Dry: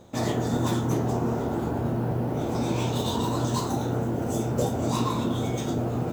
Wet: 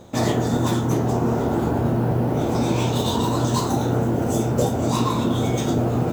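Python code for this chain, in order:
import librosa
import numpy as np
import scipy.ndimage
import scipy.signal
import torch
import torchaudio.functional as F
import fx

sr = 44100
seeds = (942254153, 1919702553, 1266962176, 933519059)

y = fx.rider(x, sr, range_db=10, speed_s=0.5)
y = F.gain(torch.from_numpy(y), 5.5).numpy()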